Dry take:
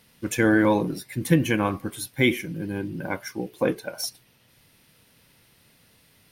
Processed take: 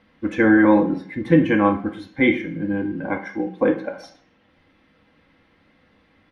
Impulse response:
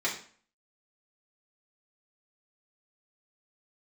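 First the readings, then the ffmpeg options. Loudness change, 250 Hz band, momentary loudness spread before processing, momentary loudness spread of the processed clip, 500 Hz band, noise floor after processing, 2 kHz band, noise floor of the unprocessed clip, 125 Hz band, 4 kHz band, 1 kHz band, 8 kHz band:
+5.0 dB, +6.0 dB, 12 LU, 13 LU, +4.5 dB, -60 dBFS, +3.5 dB, -60 dBFS, 0.0 dB, -6.0 dB, +5.0 dB, under -20 dB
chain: -filter_complex "[0:a]lowpass=1.9k,aecho=1:1:3.8:0.47,asplit=2[a][b];[1:a]atrim=start_sample=2205,asetrate=40131,aresample=44100[c];[b][c]afir=irnorm=-1:irlink=0,volume=-8.5dB[d];[a][d]amix=inputs=2:normalize=0"

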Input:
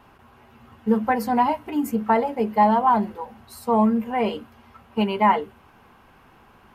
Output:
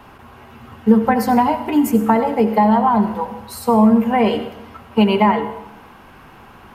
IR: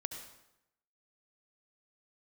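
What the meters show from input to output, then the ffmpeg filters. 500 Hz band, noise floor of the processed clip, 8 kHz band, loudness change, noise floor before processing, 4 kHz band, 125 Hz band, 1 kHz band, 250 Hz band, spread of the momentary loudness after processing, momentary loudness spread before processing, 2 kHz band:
+6.0 dB, -43 dBFS, n/a, +5.5 dB, -54 dBFS, +7.5 dB, +8.5 dB, +3.0 dB, +8.5 dB, 12 LU, 14 LU, +4.5 dB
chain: -filter_complex "[0:a]acrossover=split=240[a][b];[b]acompressor=threshold=-23dB:ratio=6[c];[a][c]amix=inputs=2:normalize=0,asplit=2[d][e];[1:a]atrim=start_sample=2205[f];[e][f]afir=irnorm=-1:irlink=0,volume=3dB[g];[d][g]amix=inputs=2:normalize=0,volume=3dB"

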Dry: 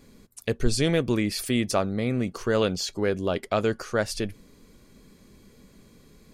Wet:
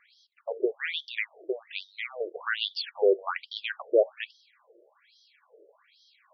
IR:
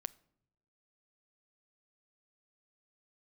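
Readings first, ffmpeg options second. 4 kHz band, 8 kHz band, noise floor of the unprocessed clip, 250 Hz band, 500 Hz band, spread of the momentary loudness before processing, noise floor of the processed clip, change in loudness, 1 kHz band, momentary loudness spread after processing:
-1.5 dB, under -35 dB, -56 dBFS, -14.0 dB, -1.5 dB, 6 LU, -67 dBFS, -3.5 dB, -5.5 dB, 14 LU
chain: -filter_complex "[0:a]asplit=2[a][b];[1:a]atrim=start_sample=2205[c];[b][c]afir=irnorm=-1:irlink=0,volume=7.5dB[d];[a][d]amix=inputs=2:normalize=0,afftfilt=real='re*between(b*sr/1024,470*pow(4400/470,0.5+0.5*sin(2*PI*1.2*pts/sr))/1.41,470*pow(4400/470,0.5+0.5*sin(2*PI*1.2*pts/sr))*1.41)':imag='im*between(b*sr/1024,470*pow(4400/470,0.5+0.5*sin(2*PI*1.2*pts/sr))/1.41,470*pow(4400/470,0.5+0.5*sin(2*PI*1.2*pts/sr))*1.41)':win_size=1024:overlap=0.75,volume=-3dB"

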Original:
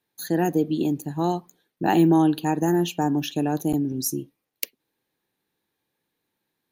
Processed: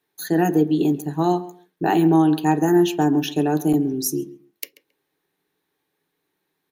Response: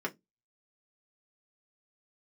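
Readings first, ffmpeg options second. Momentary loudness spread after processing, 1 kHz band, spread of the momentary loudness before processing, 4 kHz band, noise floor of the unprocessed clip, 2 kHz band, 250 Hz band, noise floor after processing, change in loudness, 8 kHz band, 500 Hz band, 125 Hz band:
19 LU, +3.0 dB, 14 LU, +2.0 dB, -81 dBFS, +3.5 dB, +3.5 dB, -77 dBFS, +4.0 dB, +2.0 dB, +4.0 dB, +2.5 dB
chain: -filter_complex "[0:a]asplit=2[a][b];[b]adelay=135,lowpass=f=2.3k:p=1,volume=-16.5dB,asplit=2[c][d];[d]adelay=135,lowpass=f=2.3k:p=1,volume=0.17[e];[a][c][e]amix=inputs=3:normalize=0,alimiter=limit=-11.5dB:level=0:latency=1:release=299,asplit=2[f][g];[1:a]atrim=start_sample=2205[h];[g][h]afir=irnorm=-1:irlink=0,volume=-6dB[i];[f][i]amix=inputs=2:normalize=0"

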